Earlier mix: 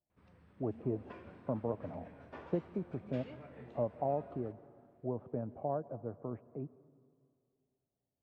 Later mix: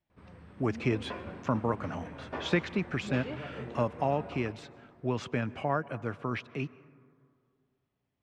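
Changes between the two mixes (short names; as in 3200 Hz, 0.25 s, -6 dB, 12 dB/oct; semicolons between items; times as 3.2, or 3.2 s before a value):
speech: remove ladder low-pass 800 Hz, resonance 40%; background +11.5 dB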